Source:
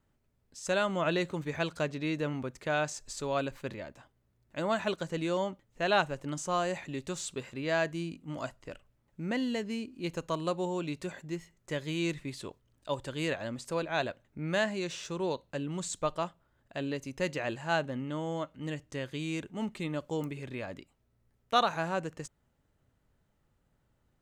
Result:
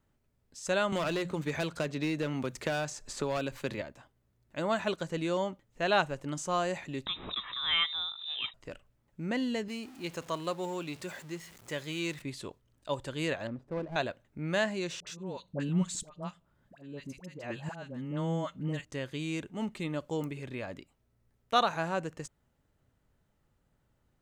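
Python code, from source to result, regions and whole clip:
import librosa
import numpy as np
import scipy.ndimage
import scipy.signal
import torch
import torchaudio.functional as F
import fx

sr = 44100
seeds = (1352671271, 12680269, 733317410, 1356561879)

y = fx.chain(x, sr, fx.hum_notches(base_hz=60, count=3),
    fx.clip_hard(threshold_db=-27.5),
    fx.band_squash(depth_pct=100), at=(0.92, 3.82))
y = fx.chain(y, sr, fx.freq_invert(carrier_hz=3800),
    fx.peak_eq(hz=1200.0, db=6.5, octaves=0.29),
    fx.pre_swell(db_per_s=79.0), at=(7.06, 8.54))
y = fx.chain(y, sr, fx.zero_step(step_db=-45.5),
    fx.highpass(hz=53.0, slope=12),
    fx.low_shelf(hz=480.0, db=-6.5), at=(9.68, 12.22))
y = fx.chain(y, sr, fx.median_filter(points=41),
    fx.lowpass(hz=1100.0, slope=6), at=(13.47, 13.96))
y = fx.chain(y, sr, fx.peak_eq(hz=180.0, db=12.0, octaves=0.38),
    fx.auto_swell(attack_ms=506.0),
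    fx.dispersion(late='highs', ms=69.0, hz=890.0), at=(15.0, 18.85))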